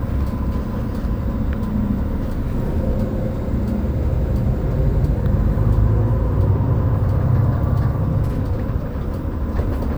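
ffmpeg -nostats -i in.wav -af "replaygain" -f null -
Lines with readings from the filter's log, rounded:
track_gain = +6.2 dB
track_peak = 0.372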